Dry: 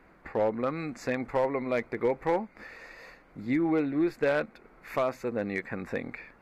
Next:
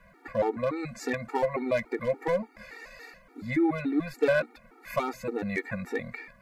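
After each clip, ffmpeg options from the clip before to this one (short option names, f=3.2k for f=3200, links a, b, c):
-af "highshelf=f=5.6k:g=7,afftfilt=real='re*gt(sin(2*PI*3.5*pts/sr)*(1-2*mod(floor(b*sr/1024/240),2)),0)':imag='im*gt(sin(2*PI*3.5*pts/sr)*(1-2*mod(floor(b*sr/1024/240),2)),0)':win_size=1024:overlap=0.75,volume=4dB"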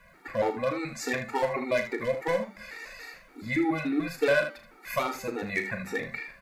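-filter_complex "[0:a]tiltshelf=f=1.4k:g=-4,bandreject=f=194.8:t=h:w=4,bandreject=f=389.6:t=h:w=4,bandreject=f=584.4:t=h:w=4,bandreject=f=779.2:t=h:w=4,bandreject=f=974:t=h:w=4,bandreject=f=1.1688k:t=h:w=4,bandreject=f=1.3636k:t=h:w=4,bandreject=f=1.5584k:t=h:w=4,bandreject=f=1.7532k:t=h:w=4,bandreject=f=1.948k:t=h:w=4,bandreject=f=2.1428k:t=h:w=4,bandreject=f=2.3376k:t=h:w=4,bandreject=f=2.5324k:t=h:w=4,bandreject=f=2.7272k:t=h:w=4,bandreject=f=2.922k:t=h:w=4,bandreject=f=3.1168k:t=h:w=4,bandreject=f=3.3116k:t=h:w=4,bandreject=f=3.5064k:t=h:w=4,bandreject=f=3.7012k:t=h:w=4,bandreject=f=3.896k:t=h:w=4,bandreject=f=4.0908k:t=h:w=4,bandreject=f=4.2856k:t=h:w=4,bandreject=f=4.4804k:t=h:w=4,bandreject=f=4.6752k:t=h:w=4,bandreject=f=4.87k:t=h:w=4,bandreject=f=5.0648k:t=h:w=4,bandreject=f=5.2596k:t=h:w=4,bandreject=f=5.4544k:t=h:w=4,bandreject=f=5.6492k:t=h:w=4,bandreject=f=5.844k:t=h:w=4,bandreject=f=6.0388k:t=h:w=4,bandreject=f=6.2336k:t=h:w=4,bandreject=f=6.4284k:t=h:w=4,bandreject=f=6.6232k:t=h:w=4,bandreject=f=6.818k:t=h:w=4,bandreject=f=7.0128k:t=h:w=4,asplit=2[a][b];[b]aecho=0:1:37|77:0.355|0.316[c];[a][c]amix=inputs=2:normalize=0,volume=2dB"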